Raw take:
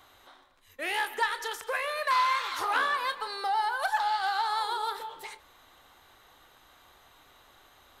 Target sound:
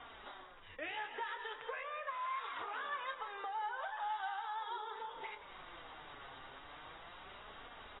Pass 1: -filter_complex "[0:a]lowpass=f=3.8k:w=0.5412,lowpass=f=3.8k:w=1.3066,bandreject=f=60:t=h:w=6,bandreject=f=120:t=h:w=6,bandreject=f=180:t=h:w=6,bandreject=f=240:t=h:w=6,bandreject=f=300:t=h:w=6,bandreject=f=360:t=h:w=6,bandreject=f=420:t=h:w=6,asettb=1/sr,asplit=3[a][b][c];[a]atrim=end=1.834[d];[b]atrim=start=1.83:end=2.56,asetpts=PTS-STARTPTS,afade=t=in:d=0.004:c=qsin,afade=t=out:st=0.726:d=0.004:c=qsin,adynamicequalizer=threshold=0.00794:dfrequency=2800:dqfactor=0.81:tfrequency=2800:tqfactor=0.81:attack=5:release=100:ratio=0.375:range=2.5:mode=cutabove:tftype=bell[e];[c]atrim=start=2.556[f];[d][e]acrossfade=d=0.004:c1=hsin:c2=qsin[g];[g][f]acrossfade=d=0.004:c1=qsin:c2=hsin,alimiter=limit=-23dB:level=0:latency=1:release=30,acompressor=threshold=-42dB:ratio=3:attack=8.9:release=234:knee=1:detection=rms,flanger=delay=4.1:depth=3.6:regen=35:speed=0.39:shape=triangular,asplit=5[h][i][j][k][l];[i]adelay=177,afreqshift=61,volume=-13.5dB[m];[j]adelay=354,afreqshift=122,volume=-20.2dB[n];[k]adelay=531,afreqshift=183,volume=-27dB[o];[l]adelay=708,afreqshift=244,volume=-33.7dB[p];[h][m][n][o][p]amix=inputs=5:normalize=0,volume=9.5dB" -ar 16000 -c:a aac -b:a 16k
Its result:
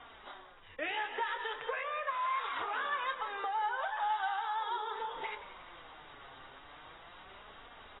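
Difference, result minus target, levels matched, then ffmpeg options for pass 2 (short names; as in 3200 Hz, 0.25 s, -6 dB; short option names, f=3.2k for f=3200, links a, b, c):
compressor: peak gain reduction -6.5 dB
-filter_complex "[0:a]lowpass=f=3.8k:w=0.5412,lowpass=f=3.8k:w=1.3066,bandreject=f=60:t=h:w=6,bandreject=f=120:t=h:w=6,bandreject=f=180:t=h:w=6,bandreject=f=240:t=h:w=6,bandreject=f=300:t=h:w=6,bandreject=f=360:t=h:w=6,bandreject=f=420:t=h:w=6,asettb=1/sr,asplit=3[a][b][c];[a]atrim=end=1.834[d];[b]atrim=start=1.83:end=2.56,asetpts=PTS-STARTPTS,afade=t=in:d=0.004:c=qsin,afade=t=out:st=0.726:d=0.004:c=qsin,adynamicequalizer=threshold=0.00794:dfrequency=2800:dqfactor=0.81:tfrequency=2800:tqfactor=0.81:attack=5:release=100:ratio=0.375:range=2.5:mode=cutabove:tftype=bell[e];[c]atrim=start=2.556[f];[d][e]acrossfade=d=0.004:c1=hsin:c2=qsin[g];[g][f]acrossfade=d=0.004:c1=qsin:c2=hsin,alimiter=limit=-23dB:level=0:latency=1:release=30,acompressor=threshold=-51.5dB:ratio=3:attack=8.9:release=234:knee=1:detection=rms,flanger=delay=4.1:depth=3.6:regen=35:speed=0.39:shape=triangular,asplit=5[h][i][j][k][l];[i]adelay=177,afreqshift=61,volume=-13.5dB[m];[j]adelay=354,afreqshift=122,volume=-20.2dB[n];[k]adelay=531,afreqshift=183,volume=-27dB[o];[l]adelay=708,afreqshift=244,volume=-33.7dB[p];[h][m][n][o][p]amix=inputs=5:normalize=0,volume=9.5dB" -ar 16000 -c:a aac -b:a 16k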